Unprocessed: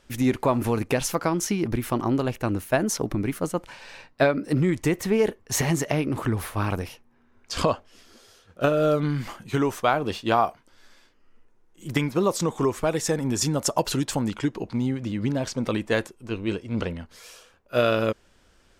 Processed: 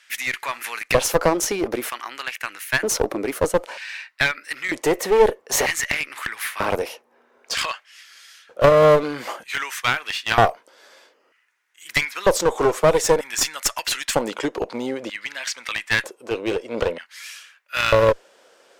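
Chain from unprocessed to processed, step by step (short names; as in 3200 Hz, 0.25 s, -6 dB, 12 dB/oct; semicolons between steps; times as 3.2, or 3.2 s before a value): LFO high-pass square 0.53 Hz 510–1900 Hz; one-sided clip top -26.5 dBFS; gain +6.5 dB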